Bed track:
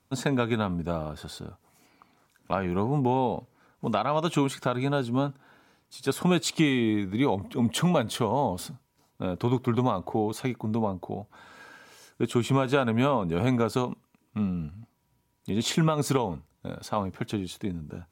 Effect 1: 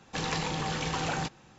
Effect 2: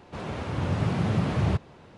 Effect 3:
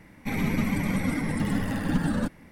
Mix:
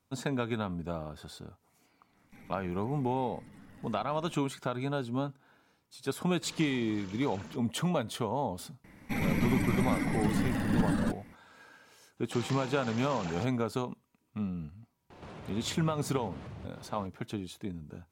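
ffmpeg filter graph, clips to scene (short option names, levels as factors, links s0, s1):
-filter_complex "[3:a]asplit=2[s0][s1];[1:a]asplit=2[s2][s3];[0:a]volume=0.473[s4];[s0]acompressor=threshold=0.0224:ratio=6:attack=3.2:release=140:knee=1:detection=peak[s5];[s2]asuperstop=centerf=770:order=4:qfactor=7.3[s6];[s3]highpass=140[s7];[2:a]acompressor=threshold=0.00794:ratio=6:attack=3.2:release=140:knee=1:detection=peak[s8];[s5]atrim=end=2.51,asetpts=PTS-STARTPTS,volume=0.141,afade=t=in:d=0.1,afade=t=out:st=2.41:d=0.1,adelay=2070[s9];[s6]atrim=end=1.58,asetpts=PTS-STARTPTS,volume=0.141,afade=t=in:d=0.004:c=hsin,afade=t=out:st=1.576:d=0.004:c=hsin,adelay=6280[s10];[s1]atrim=end=2.51,asetpts=PTS-STARTPTS,volume=0.708,afade=t=in:d=0.004:c=hsin,afade=t=out:st=2.506:d=0.004:c=hsin,adelay=8840[s11];[s7]atrim=end=1.58,asetpts=PTS-STARTPTS,volume=0.316,afade=t=in:d=0.004:c=hsin,afade=t=out:st=1.576:d=0.004:c=hsin,adelay=12170[s12];[s8]atrim=end=1.97,asetpts=PTS-STARTPTS,volume=0.891,afade=t=in:d=0.004:c=hsin,afade=t=out:st=1.966:d=0.004:c=hsin,adelay=15100[s13];[s4][s9][s10][s11][s12][s13]amix=inputs=6:normalize=0"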